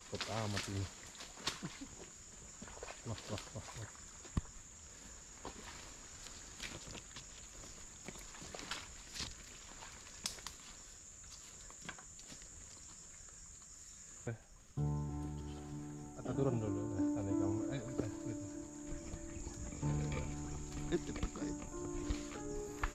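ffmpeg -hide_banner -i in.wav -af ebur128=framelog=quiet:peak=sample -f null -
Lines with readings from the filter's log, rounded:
Integrated loudness:
  I:         -44.4 LUFS
  Threshold: -54.4 LUFS
Loudness range:
  LRA:        10.0 LU
  Threshold: -64.6 LUFS
  LRA low:   -50.0 LUFS
  LRA high:  -40.0 LUFS
Sample peak:
  Peak:      -18.8 dBFS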